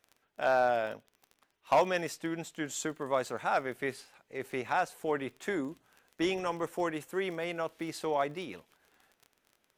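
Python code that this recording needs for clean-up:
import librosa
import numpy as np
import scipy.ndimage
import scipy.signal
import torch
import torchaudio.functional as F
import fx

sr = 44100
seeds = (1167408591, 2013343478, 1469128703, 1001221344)

y = fx.fix_declip(x, sr, threshold_db=-18.0)
y = fx.fix_declick_ar(y, sr, threshold=6.5)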